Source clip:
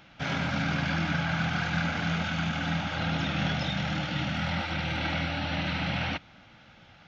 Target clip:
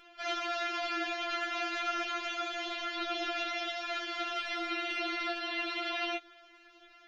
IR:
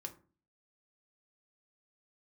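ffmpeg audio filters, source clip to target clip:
-filter_complex "[0:a]asplit=2[a][b];[1:a]atrim=start_sample=2205,afade=t=out:st=0.33:d=0.01,atrim=end_sample=14994[c];[b][c]afir=irnorm=-1:irlink=0,volume=-15dB[d];[a][d]amix=inputs=2:normalize=0,afftfilt=real='re*4*eq(mod(b,16),0)':imag='im*4*eq(mod(b,16),0)':win_size=2048:overlap=0.75"

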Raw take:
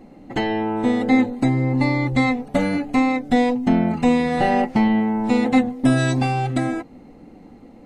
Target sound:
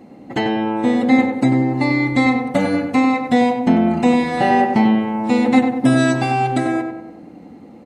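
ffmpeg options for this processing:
-filter_complex "[0:a]highpass=98,asplit=2[a][b];[b]adelay=95,lowpass=f=2k:p=1,volume=-5dB,asplit=2[c][d];[d]adelay=95,lowpass=f=2k:p=1,volume=0.53,asplit=2[e][f];[f]adelay=95,lowpass=f=2k:p=1,volume=0.53,asplit=2[g][h];[h]adelay=95,lowpass=f=2k:p=1,volume=0.53,asplit=2[i][j];[j]adelay=95,lowpass=f=2k:p=1,volume=0.53,asplit=2[k][l];[l]adelay=95,lowpass=f=2k:p=1,volume=0.53,asplit=2[m][n];[n]adelay=95,lowpass=f=2k:p=1,volume=0.53[o];[c][e][g][i][k][m][o]amix=inputs=7:normalize=0[p];[a][p]amix=inputs=2:normalize=0,volume=2.5dB"

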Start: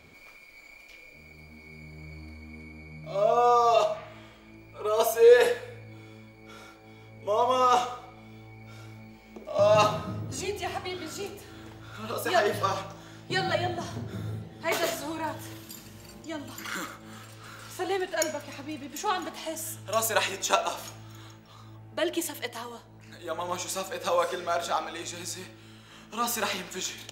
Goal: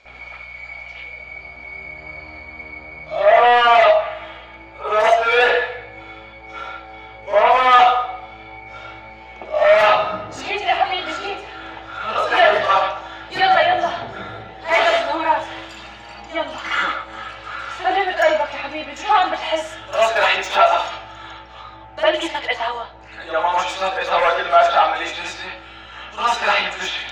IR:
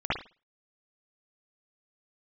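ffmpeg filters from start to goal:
-filter_complex "[0:a]lowpass=f=6.8k:t=q:w=1.8,asplit=2[a][b];[b]aeval=exprs='0.531*sin(PI/2*7.08*val(0)/0.531)':c=same,volume=-10.5dB[c];[a][c]amix=inputs=2:normalize=0,acrossover=split=420 4600:gain=0.0708 1 0.224[d][e][f];[d][e][f]amix=inputs=3:normalize=0,aeval=exprs='val(0)+0.00141*(sin(2*PI*60*n/s)+sin(2*PI*2*60*n/s)/2+sin(2*PI*3*60*n/s)/3+sin(2*PI*4*60*n/s)/4+sin(2*PI*5*60*n/s)/5)':c=same[g];[1:a]atrim=start_sample=2205,atrim=end_sample=4410[h];[g][h]afir=irnorm=-1:irlink=0,volume=-6.5dB"

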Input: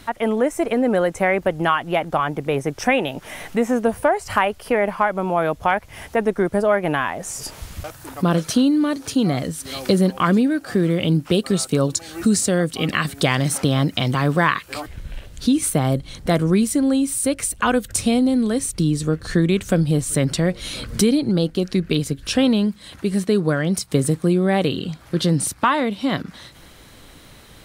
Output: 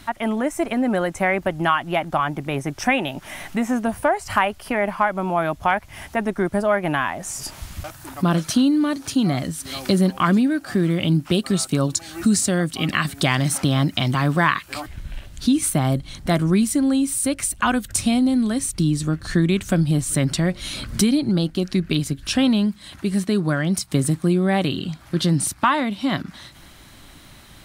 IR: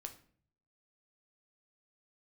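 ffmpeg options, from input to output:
-af "equalizer=f=470:t=o:w=0.28:g=-13.5"

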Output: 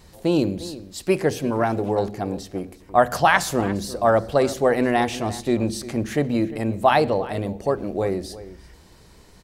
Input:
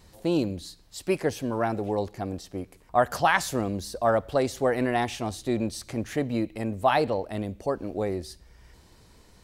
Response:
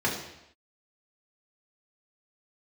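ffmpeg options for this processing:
-filter_complex "[0:a]asplit=2[a][b];[b]adelay=349.9,volume=-16dB,highshelf=f=4k:g=-7.87[c];[a][c]amix=inputs=2:normalize=0,asplit=2[d][e];[1:a]atrim=start_sample=2205,lowshelf=f=380:g=10.5[f];[e][f]afir=irnorm=-1:irlink=0,volume=-30dB[g];[d][g]amix=inputs=2:normalize=0,volume=4.5dB"

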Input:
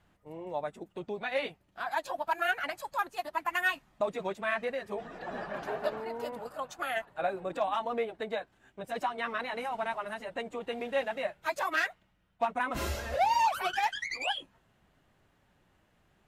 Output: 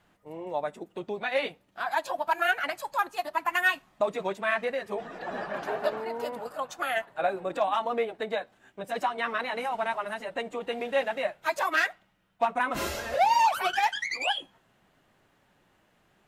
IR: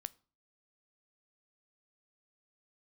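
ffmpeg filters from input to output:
-filter_complex "[0:a]asplit=2[a][b];[b]highpass=f=48:w=0.5412,highpass=f=48:w=1.3066[c];[1:a]atrim=start_sample=2205,lowshelf=f=100:g=-10[d];[c][d]afir=irnorm=-1:irlink=0,volume=6dB[e];[a][e]amix=inputs=2:normalize=0,volume=-3dB"

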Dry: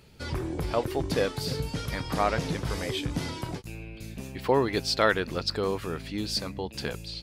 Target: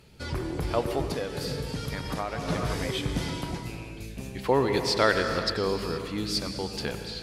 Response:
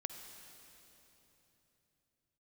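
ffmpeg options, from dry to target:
-filter_complex "[1:a]atrim=start_sample=2205,afade=t=out:st=0.33:d=0.01,atrim=end_sample=14994,asetrate=25578,aresample=44100[a];[0:a][a]afir=irnorm=-1:irlink=0,asettb=1/sr,asplit=3[b][c][d];[b]atrim=end=1.054[e];[c]atrim=start=1.05:end=2.48,asetpts=PTS-STARTPTS,afade=t=in:d=0.004:c=qsin,afade=t=out:st=1.426:d=0.004:c=qsin,acompressor=threshold=-28dB:ratio=6[f];[d]atrim=start=2.476[g];[e][f]acrossfade=d=0.004:c1=hsin:c2=qsin[h];[h][g]acrossfade=d=0.004:c1=qsin:c2=hsin"

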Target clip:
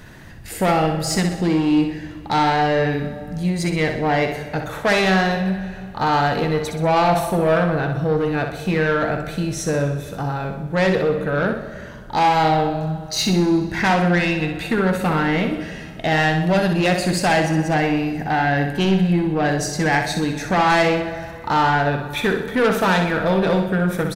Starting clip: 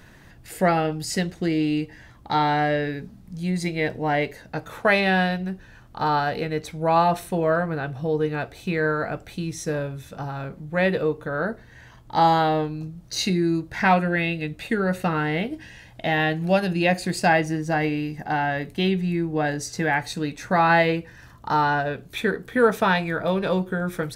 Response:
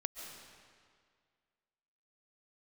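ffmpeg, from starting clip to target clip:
-filter_complex "[0:a]asplit=2[a][b];[1:a]atrim=start_sample=2205,lowshelf=f=410:g=7.5[c];[b][c]afir=irnorm=-1:irlink=0,volume=-10dB[d];[a][d]amix=inputs=2:normalize=0,asoftclip=type=tanh:threshold=-17.5dB,aecho=1:1:63|126|189|252|315|378:0.447|0.21|0.0987|0.0464|0.0218|0.0102,volume=4dB"

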